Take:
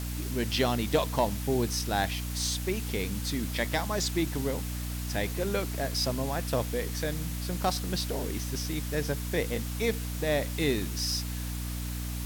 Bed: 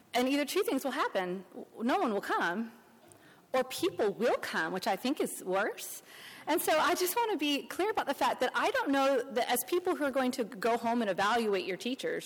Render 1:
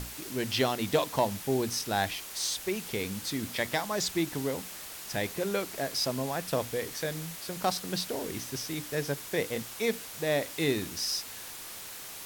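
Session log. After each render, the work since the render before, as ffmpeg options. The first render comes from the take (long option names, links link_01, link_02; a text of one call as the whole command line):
ffmpeg -i in.wav -af "bandreject=frequency=60:width_type=h:width=6,bandreject=frequency=120:width_type=h:width=6,bandreject=frequency=180:width_type=h:width=6,bandreject=frequency=240:width_type=h:width=6,bandreject=frequency=300:width_type=h:width=6" out.wav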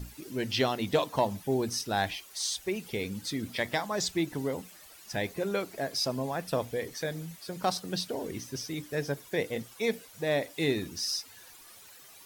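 ffmpeg -i in.wav -af "afftdn=noise_reduction=13:noise_floor=-43" out.wav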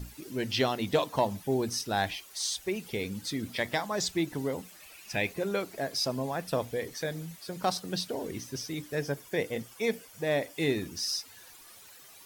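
ffmpeg -i in.wav -filter_complex "[0:a]asettb=1/sr,asplit=3[link_01][link_02][link_03];[link_01]atrim=end=4.804[link_04];[link_02]atrim=start=4.8:end=5.33,asetpts=PTS-STARTPTS,afade=type=in:duration=0.004:curve=qsin,afade=type=out:start_time=0.526:duration=0.004:curve=qsin,equalizer=frequency=2500:width_type=o:width=0.36:gain=12[link_05];[link_03]atrim=start=5.326[link_06];[link_04][link_05]acrossfade=duration=0.004:curve1=hsin:curve2=qsin[link_07];[link_07][link_06]acrossfade=duration=0.004:curve1=qsin:curve2=hsin,asettb=1/sr,asplit=3[link_08][link_09][link_10];[link_08]atrim=end=8.994[link_11];[link_09]atrim=start=8.99:end=10.97,asetpts=PTS-STARTPTS,afade=type=in:duration=0.004:curve=qsin,afade=type=out:start_time=1.976:duration=0.004:curve=qsin,bandreject=frequency=3900:width=9.3[link_12];[link_10]atrim=start=10.966[link_13];[link_11][link_12]acrossfade=duration=0.004:curve1=hsin:curve2=qsin[link_14];[link_14][link_13]acrossfade=duration=0.004:curve1=qsin:curve2=hsin" out.wav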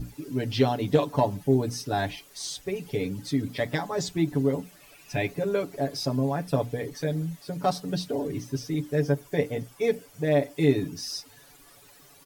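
ffmpeg -i in.wav -af "tiltshelf=frequency=750:gain=5.5,aecho=1:1:7:0.91" out.wav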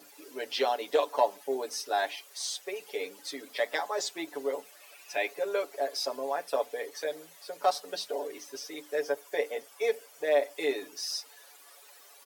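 ffmpeg -i in.wav -af "highpass=frequency=470:width=0.5412,highpass=frequency=470:width=1.3066" out.wav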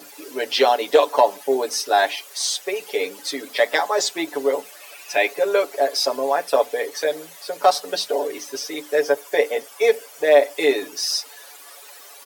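ffmpeg -i in.wav -af "volume=11.5dB,alimiter=limit=-3dB:level=0:latency=1" out.wav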